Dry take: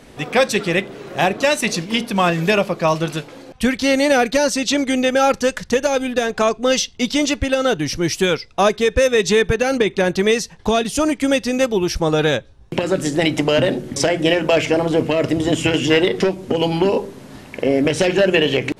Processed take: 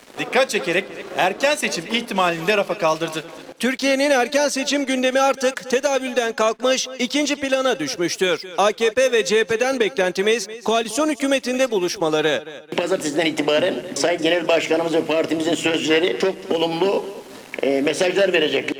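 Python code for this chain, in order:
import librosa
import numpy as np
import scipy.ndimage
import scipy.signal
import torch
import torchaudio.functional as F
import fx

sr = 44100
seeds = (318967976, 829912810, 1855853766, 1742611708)

p1 = scipy.signal.sosfilt(scipy.signal.butter(2, 280.0, 'highpass', fs=sr, output='sos'), x)
p2 = np.sign(p1) * np.maximum(np.abs(p1) - 10.0 ** (-45.0 / 20.0), 0.0)
p3 = p2 + fx.echo_feedback(p2, sr, ms=221, feedback_pct=26, wet_db=-18.5, dry=0)
p4 = fx.band_squash(p3, sr, depth_pct=40)
y = F.gain(torch.from_numpy(p4), -1.0).numpy()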